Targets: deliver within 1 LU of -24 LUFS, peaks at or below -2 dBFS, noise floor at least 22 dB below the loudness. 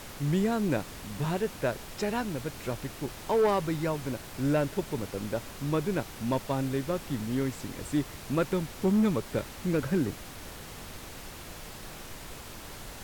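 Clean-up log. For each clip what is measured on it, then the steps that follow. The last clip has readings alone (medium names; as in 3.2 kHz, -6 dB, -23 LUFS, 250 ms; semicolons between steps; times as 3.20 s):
clipped samples 0.7%; clipping level -19.5 dBFS; noise floor -44 dBFS; noise floor target -53 dBFS; loudness -30.5 LUFS; peak level -19.5 dBFS; loudness target -24.0 LUFS
-> clip repair -19.5 dBFS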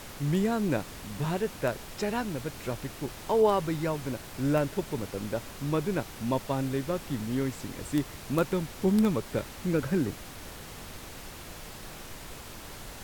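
clipped samples 0.0%; noise floor -44 dBFS; noise floor target -53 dBFS
-> noise print and reduce 9 dB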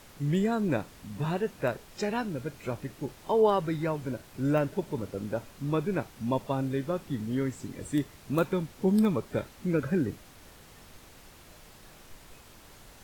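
noise floor -53 dBFS; loudness -30.5 LUFS; peak level -12.0 dBFS; loudness target -24.0 LUFS
-> trim +6.5 dB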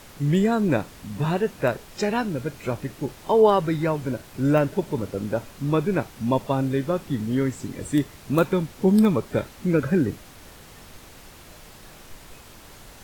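loudness -24.0 LUFS; peak level -5.5 dBFS; noise floor -47 dBFS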